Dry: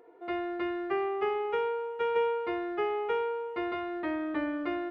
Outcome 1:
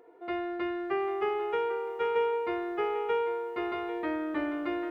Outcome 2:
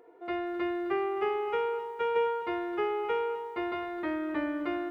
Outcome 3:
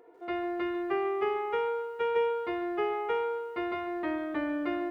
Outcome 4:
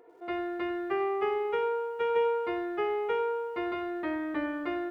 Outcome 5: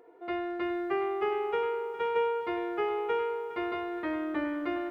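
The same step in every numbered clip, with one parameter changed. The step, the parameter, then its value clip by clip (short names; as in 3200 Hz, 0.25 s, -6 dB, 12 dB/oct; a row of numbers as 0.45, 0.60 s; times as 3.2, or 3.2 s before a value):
lo-fi delay, time: 794, 258, 143, 94, 410 ms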